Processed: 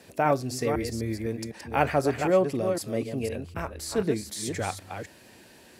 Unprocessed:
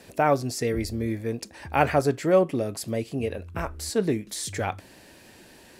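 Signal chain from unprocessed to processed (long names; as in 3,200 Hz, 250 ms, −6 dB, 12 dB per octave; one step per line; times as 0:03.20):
delay that plays each chunk backwards 253 ms, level −6.5 dB
high-pass filter 57 Hz
level −2.5 dB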